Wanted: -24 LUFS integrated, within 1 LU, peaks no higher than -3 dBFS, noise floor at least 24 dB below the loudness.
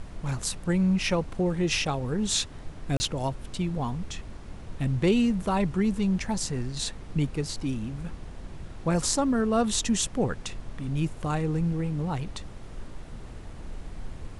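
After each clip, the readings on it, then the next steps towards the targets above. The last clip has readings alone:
dropouts 1; longest dropout 30 ms; noise floor -42 dBFS; noise floor target -52 dBFS; loudness -28.0 LUFS; peak level -10.0 dBFS; loudness target -24.0 LUFS
-> interpolate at 2.97 s, 30 ms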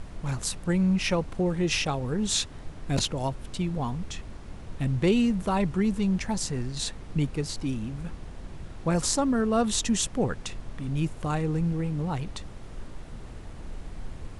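dropouts 0; noise floor -42 dBFS; noise floor target -52 dBFS
-> noise print and reduce 10 dB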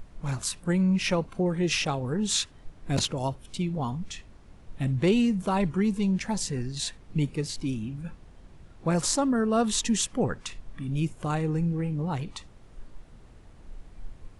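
noise floor -52 dBFS; loudness -28.0 LUFS; peak level -9.5 dBFS; loudness target -24.0 LUFS
-> trim +4 dB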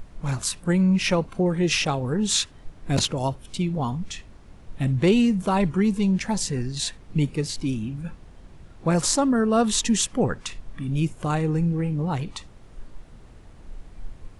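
loudness -24.0 LUFS; peak level -5.5 dBFS; noise floor -48 dBFS

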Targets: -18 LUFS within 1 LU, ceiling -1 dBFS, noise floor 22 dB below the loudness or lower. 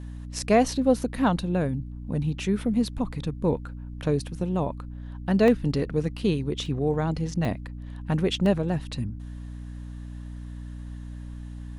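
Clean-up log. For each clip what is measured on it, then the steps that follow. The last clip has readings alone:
dropouts 4; longest dropout 1.2 ms; hum 60 Hz; highest harmonic 300 Hz; hum level -34 dBFS; loudness -26.5 LUFS; peak level -7.5 dBFS; loudness target -18.0 LUFS
-> interpolate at 5.48/6.66/7.45/8.46 s, 1.2 ms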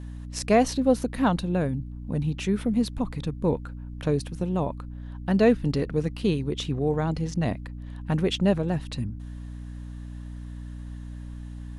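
dropouts 0; hum 60 Hz; highest harmonic 300 Hz; hum level -34 dBFS
-> hum notches 60/120/180/240/300 Hz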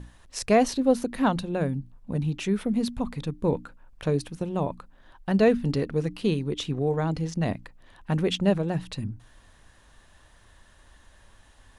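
hum not found; loudness -27.0 LUFS; peak level -7.5 dBFS; loudness target -18.0 LUFS
-> trim +9 dB; peak limiter -1 dBFS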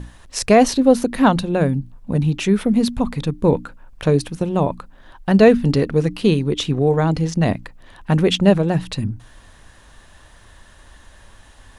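loudness -18.0 LUFS; peak level -1.0 dBFS; noise floor -48 dBFS

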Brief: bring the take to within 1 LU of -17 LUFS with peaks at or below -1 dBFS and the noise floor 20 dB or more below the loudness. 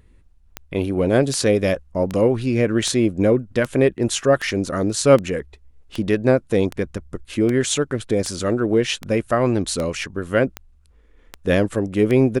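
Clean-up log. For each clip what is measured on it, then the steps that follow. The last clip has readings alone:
clicks found 16; loudness -20.0 LUFS; peak level -2.0 dBFS; loudness target -17.0 LUFS
-> de-click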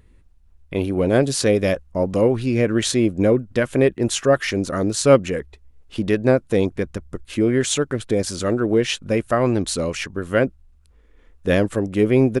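clicks found 0; loudness -20.0 LUFS; peak level -2.0 dBFS; loudness target -17.0 LUFS
-> trim +3 dB; peak limiter -1 dBFS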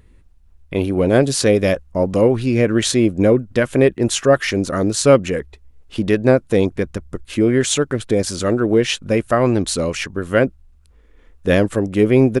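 loudness -17.5 LUFS; peak level -1.0 dBFS; noise floor -50 dBFS

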